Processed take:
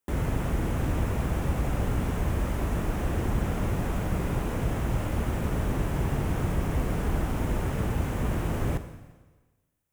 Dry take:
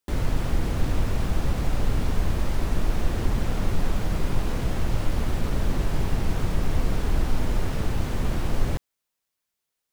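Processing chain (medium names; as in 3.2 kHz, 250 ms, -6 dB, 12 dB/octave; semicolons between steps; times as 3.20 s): high-pass 45 Hz; peaking EQ 4.4 kHz -11 dB 0.83 oct; on a send: reverberation RT60 1.3 s, pre-delay 38 ms, DRR 9.5 dB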